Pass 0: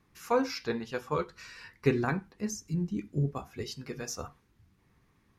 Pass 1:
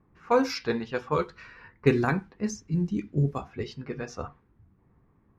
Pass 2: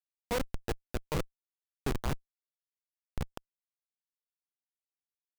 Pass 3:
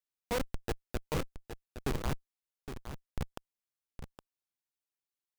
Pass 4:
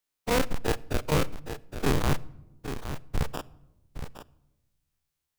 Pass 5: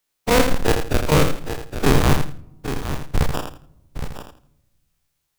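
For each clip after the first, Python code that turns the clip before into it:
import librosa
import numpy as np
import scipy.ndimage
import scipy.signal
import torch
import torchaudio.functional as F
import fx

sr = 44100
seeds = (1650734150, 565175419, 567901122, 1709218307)

y1 = fx.env_lowpass(x, sr, base_hz=1000.0, full_db=-25.5)
y1 = y1 * librosa.db_to_amplitude(4.5)
y2 = fx.low_shelf(y1, sr, hz=370.0, db=-5.5)
y2 = fx.schmitt(y2, sr, flips_db=-21.5)
y2 = y2 * librosa.db_to_amplitude(3.0)
y3 = y2 + 10.0 ** (-10.0 / 20.0) * np.pad(y2, (int(815 * sr / 1000.0), 0))[:len(y2)]
y3 = y3 * librosa.db_to_amplitude(-1.0)
y4 = fx.spec_dilate(y3, sr, span_ms=60)
y4 = fx.room_shoebox(y4, sr, seeds[0], volume_m3=3700.0, walls='furnished', distance_m=0.4)
y4 = y4 * librosa.db_to_amplitude(5.0)
y5 = fx.echo_feedback(y4, sr, ms=82, feedback_pct=21, wet_db=-7.0)
y5 = y5 * librosa.db_to_amplitude(8.5)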